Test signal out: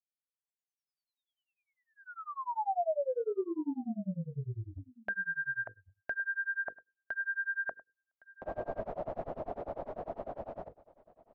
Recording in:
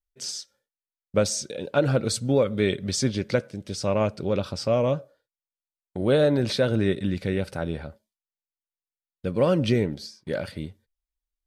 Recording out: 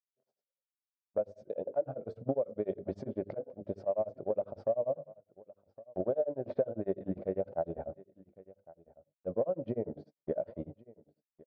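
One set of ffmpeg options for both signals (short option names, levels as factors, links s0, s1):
-filter_complex "[0:a]lowpass=f=650:t=q:w=4.9,lowshelf=f=260:g=-8.5,dynaudnorm=f=700:g=7:m=2.11,bandreject=f=50:t=h:w=6,bandreject=f=100:t=h:w=6,bandreject=f=150:t=h:w=6,bandreject=f=200:t=h:w=6,bandreject=f=250:t=h:w=6,bandreject=f=300:t=h:w=6,bandreject=f=350:t=h:w=6,bandreject=f=400:t=h:w=6,bandreject=f=450:t=h:w=6,bandreject=f=500:t=h:w=6,agate=range=0.0398:threshold=0.00562:ratio=16:detection=peak,acompressor=threshold=0.0447:ratio=6,asplit=2[s0][s1];[s1]aecho=0:1:1112:0.0891[s2];[s0][s2]amix=inputs=2:normalize=0,tremolo=f=10:d=0.98"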